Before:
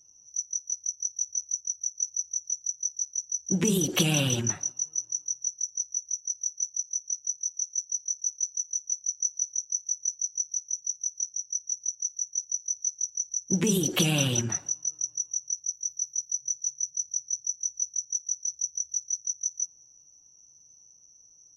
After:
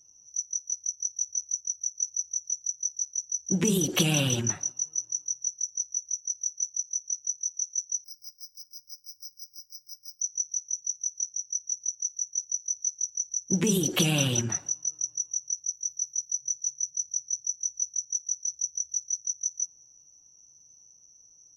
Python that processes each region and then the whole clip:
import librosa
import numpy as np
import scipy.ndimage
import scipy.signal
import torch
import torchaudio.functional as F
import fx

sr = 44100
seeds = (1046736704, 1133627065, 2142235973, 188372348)

y = fx.chain(x, sr, fx.resample_bad(factor=4, down='filtered', up='zero_stuff'),
    fx.ensemble(), at=(8.04, 10.21))